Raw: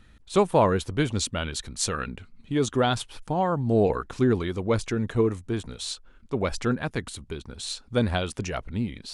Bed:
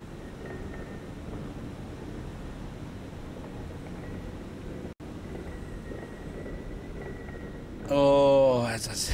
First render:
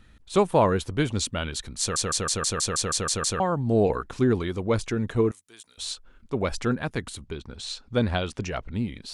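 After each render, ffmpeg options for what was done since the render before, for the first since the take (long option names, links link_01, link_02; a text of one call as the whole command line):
ffmpeg -i in.wav -filter_complex "[0:a]asettb=1/sr,asplit=3[link_01][link_02][link_03];[link_01]atrim=end=5.314[link_04];[link_02]atrim=start=5.31:end=5.78,asetpts=PTS-STARTPTS,afade=type=in:duration=0.004:curve=qsin,afade=type=out:start_time=0.466:duration=0.004:curve=qsin,aderivative[link_05];[link_03]atrim=start=5.776[link_06];[link_04][link_05]acrossfade=duration=0.004:curve1=hsin:curve2=qsin[link_07];[link_07][link_06]acrossfade=duration=0.004:curve1=qsin:curve2=hsin,asettb=1/sr,asplit=3[link_08][link_09][link_10];[link_08]atrim=end=7.264[link_11];[link_09]atrim=start=7.26:end=8.75,asetpts=PTS-STARTPTS,afade=type=in:duration=0.004:curve=qsin,afade=type=out:start_time=1.486:duration=0.004:curve=qsin,lowpass=6700[link_12];[link_10]atrim=start=8.746[link_13];[link_11][link_12]acrossfade=duration=0.004:curve1=hsin:curve2=qsin[link_14];[link_14][link_13]acrossfade=duration=0.004:curve1=qsin:curve2=hsin,asplit=11[link_15][link_16][link_17][link_18][link_19][link_20][link_21][link_22][link_23][link_24][link_25];[link_15]atrim=end=1.962[link_26];[link_16]atrim=start=1.798:end=1.962[link_27];[link_17]atrim=start=1.798:end=1.962[link_28];[link_18]atrim=start=1.798:end=1.962[link_29];[link_19]atrim=start=1.798:end=1.962[link_30];[link_20]atrim=start=1.798:end=1.962[link_31];[link_21]atrim=start=1.798:end=1.962[link_32];[link_22]atrim=start=1.798:end=1.962[link_33];[link_23]atrim=start=1.798:end=1.962[link_34];[link_24]atrim=start=1.798:end=1.962[link_35];[link_25]atrim=start=3.398[link_36];[link_26][link_27]acrossfade=duration=0.004:curve1=hsin:curve2=hsin[link_37];[link_37][link_28]acrossfade=duration=0.004:curve1=hsin:curve2=hsin[link_38];[link_38][link_29]acrossfade=duration=0.004:curve1=hsin:curve2=hsin[link_39];[link_39][link_30]acrossfade=duration=0.004:curve1=hsin:curve2=hsin[link_40];[link_40][link_31]acrossfade=duration=0.004:curve1=hsin:curve2=hsin[link_41];[link_41][link_32]acrossfade=duration=0.004:curve1=hsin:curve2=hsin[link_42];[link_42][link_33]acrossfade=duration=0.004:curve1=hsin:curve2=hsin[link_43];[link_43][link_34]acrossfade=duration=0.004:curve1=hsin:curve2=hsin[link_44];[link_44][link_35]acrossfade=duration=0.004:curve1=hsin:curve2=hsin[link_45];[link_45][link_36]acrossfade=duration=0.004:curve1=hsin:curve2=hsin" out.wav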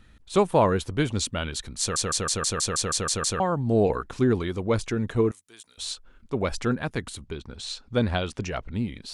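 ffmpeg -i in.wav -af anull out.wav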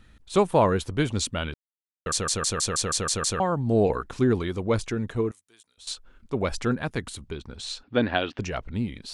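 ffmpeg -i in.wav -filter_complex "[0:a]asettb=1/sr,asplit=3[link_01][link_02][link_03];[link_01]atrim=end=7.834[link_04];[link_02]atrim=start=7.83:end=8.39,asetpts=PTS-STARTPTS,afade=type=in:duration=0.004:curve=qsin,afade=type=out:start_time=0.556:duration=0.004:curve=qsin,highpass=150,equalizer=frequency=180:width_type=q:width=4:gain=-5,equalizer=frequency=290:width_type=q:width=4:gain=8,equalizer=frequency=710:width_type=q:width=4:gain=4,equalizer=frequency=1700:width_type=q:width=4:gain=7,equalizer=frequency=2800:width_type=q:width=4:gain=6,lowpass=frequency=4300:width=0.5412,lowpass=frequency=4300:width=1.3066[link_05];[link_03]atrim=start=8.386[link_06];[link_04][link_05]acrossfade=duration=0.004:curve1=hsin:curve2=qsin[link_07];[link_07][link_06]acrossfade=duration=0.004:curve1=qsin:curve2=hsin,asplit=4[link_08][link_09][link_10][link_11];[link_08]atrim=end=1.54,asetpts=PTS-STARTPTS,afade=type=out:start_time=1.536:duration=0.004:curve=hsin[link_12];[link_09]atrim=start=1.54:end=2.06,asetpts=PTS-STARTPTS,volume=0[link_13];[link_10]atrim=start=2.06:end=5.87,asetpts=PTS-STARTPTS,afade=type=in:duration=0.004:curve=hsin,afade=type=out:start_time=2.69:duration=1.12:silence=0.16788[link_14];[link_11]atrim=start=5.87,asetpts=PTS-STARTPTS,afade=type=in:duration=0.004:curve=hsin:silence=0.16788[link_15];[link_12][link_13][link_14][link_15]concat=n=4:v=0:a=1" out.wav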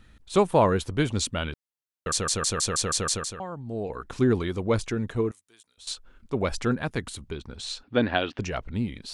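ffmpeg -i in.wav -filter_complex "[0:a]asplit=3[link_01][link_02][link_03];[link_01]atrim=end=3.4,asetpts=PTS-STARTPTS,afade=type=out:start_time=3.13:duration=0.27:curve=qua:silence=0.281838[link_04];[link_02]atrim=start=3.4:end=3.84,asetpts=PTS-STARTPTS,volume=-11dB[link_05];[link_03]atrim=start=3.84,asetpts=PTS-STARTPTS,afade=type=in:duration=0.27:curve=qua:silence=0.281838[link_06];[link_04][link_05][link_06]concat=n=3:v=0:a=1" out.wav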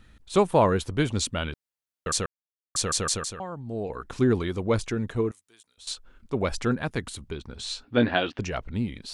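ffmpeg -i in.wav -filter_complex "[0:a]asettb=1/sr,asplit=3[link_01][link_02][link_03];[link_01]atrim=end=7.554[link_04];[link_02]atrim=start=7.55:end=8.27,asetpts=PTS-STARTPTS,afade=type=in:duration=0.004:curve=qsin,afade=type=out:start_time=0.716:duration=0.004:curve=qsin,asplit=2[link_05][link_06];[link_06]adelay=17,volume=-6dB[link_07];[link_05][link_07]amix=inputs=2:normalize=0,atrim=end_sample=31752[link_08];[link_03]atrim=start=8.266[link_09];[link_04][link_08]acrossfade=duration=0.004:curve1=hsin:curve2=qsin[link_10];[link_10][link_09]acrossfade=duration=0.004:curve1=qsin:curve2=hsin,asplit=3[link_11][link_12][link_13];[link_11]atrim=end=2.26,asetpts=PTS-STARTPTS,afade=type=out:start_time=2.256:duration=0.004:curve=hsin[link_14];[link_12]atrim=start=2.26:end=2.75,asetpts=PTS-STARTPTS,volume=0[link_15];[link_13]atrim=start=2.75,asetpts=PTS-STARTPTS,afade=type=in:duration=0.004:curve=hsin[link_16];[link_14][link_15][link_16]concat=n=3:v=0:a=1" out.wav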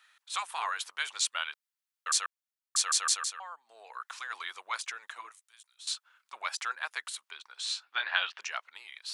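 ffmpeg -i in.wav -af "afftfilt=real='re*lt(hypot(re,im),0.447)':imag='im*lt(hypot(re,im),0.447)':win_size=1024:overlap=0.75,highpass=frequency=1000:width=0.5412,highpass=frequency=1000:width=1.3066" out.wav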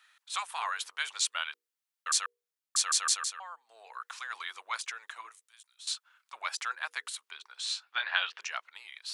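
ffmpeg -i in.wav -af "lowshelf=frequency=290:gain=-9,bandreject=frequency=60:width_type=h:width=6,bandreject=frequency=120:width_type=h:width=6,bandreject=frequency=180:width_type=h:width=6,bandreject=frequency=240:width_type=h:width=6,bandreject=frequency=300:width_type=h:width=6,bandreject=frequency=360:width_type=h:width=6,bandreject=frequency=420:width_type=h:width=6,bandreject=frequency=480:width_type=h:width=6" out.wav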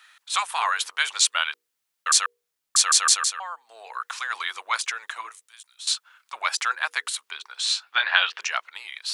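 ffmpeg -i in.wav -af "volume=10dB,alimiter=limit=-1dB:level=0:latency=1" out.wav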